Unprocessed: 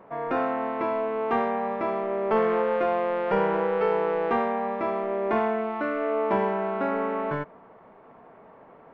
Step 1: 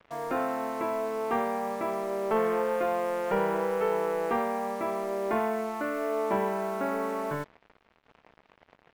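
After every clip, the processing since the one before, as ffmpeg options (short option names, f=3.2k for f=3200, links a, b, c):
-af "acrusher=bits=6:mix=0:aa=0.5,volume=-3.5dB"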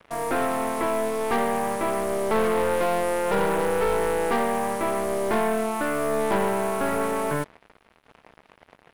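-af "equalizer=f=10k:w=1.8:g=13.5,aeval=exprs='(tanh(22.4*val(0)+0.6)-tanh(0.6))/22.4':c=same,volume=9dB"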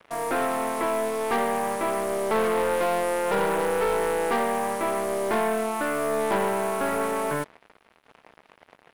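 -af "lowshelf=f=170:g=-8"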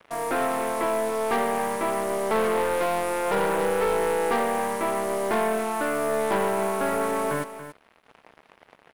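-af "aecho=1:1:281:0.251"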